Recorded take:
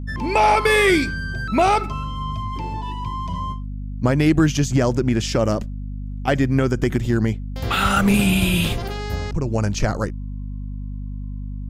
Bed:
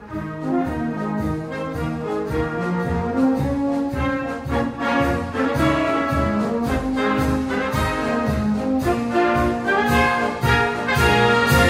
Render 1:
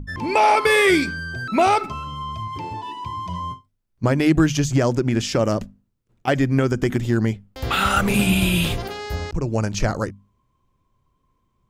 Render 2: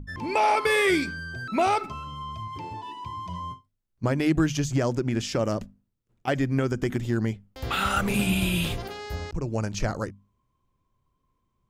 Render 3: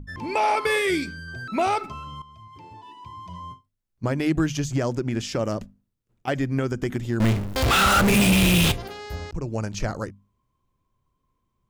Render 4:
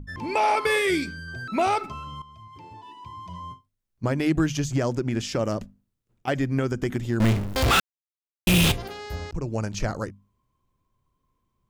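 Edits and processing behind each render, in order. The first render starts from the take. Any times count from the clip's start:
mains-hum notches 50/100/150/200/250 Hz
level −6 dB
0:00.78–0:01.28: parametric band 1,000 Hz −8.5 dB 1.2 octaves; 0:02.22–0:04.15: fade in, from −13.5 dB; 0:07.20–0:08.72: power curve on the samples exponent 0.35
0:07.80–0:08.47: silence

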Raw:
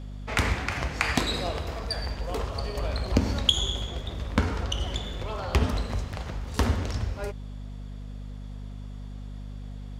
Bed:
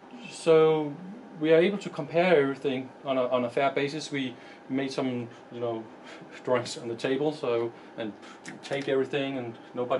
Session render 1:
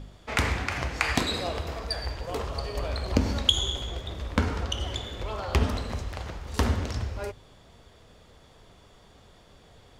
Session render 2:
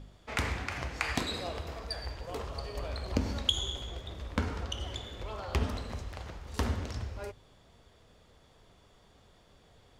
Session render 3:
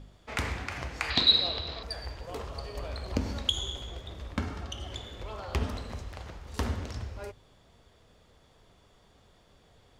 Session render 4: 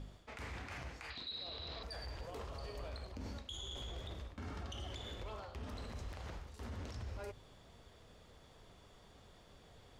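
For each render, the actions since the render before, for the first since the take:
hum removal 50 Hz, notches 5
level −6.5 dB
0:01.10–0:01.83: low-pass with resonance 4,000 Hz, resonance Q 9.6; 0:04.33–0:04.92: notch comb filter 490 Hz
reversed playback; downward compressor 12 to 1, threshold −38 dBFS, peak gain reduction 22 dB; reversed playback; brickwall limiter −37 dBFS, peak gain reduction 10.5 dB

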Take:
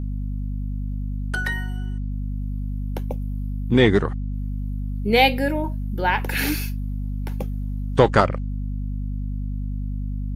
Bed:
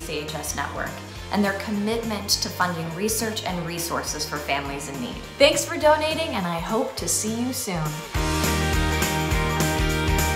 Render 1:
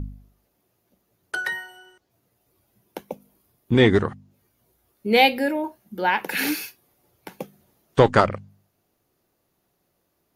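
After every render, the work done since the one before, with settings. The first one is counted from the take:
hum removal 50 Hz, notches 5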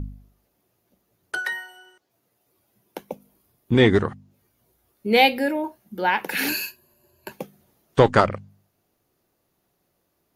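0:01.38–0:03.00: high-pass filter 490 Hz → 120 Hz 6 dB per octave
0:06.48–0:07.32: EQ curve with evenly spaced ripples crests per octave 1.4, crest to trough 16 dB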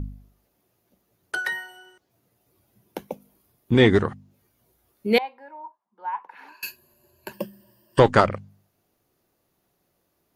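0:01.44–0:03.07: low-shelf EQ 190 Hz +10.5 dB
0:05.18–0:06.63: resonant band-pass 1,000 Hz, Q 9.9
0:07.33–0:08.00: EQ curve with evenly spaced ripples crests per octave 1.3, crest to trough 17 dB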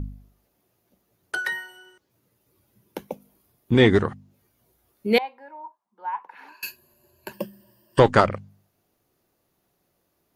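0:01.37–0:03.03: notch filter 710 Hz, Q 5.8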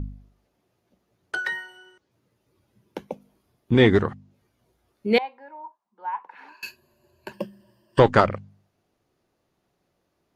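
high-frequency loss of the air 59 metres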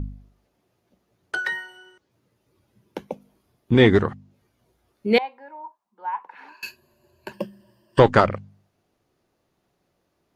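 level +1.5 dB
brickwall limiter −1 dBFS, peak gain reduction 1 dB

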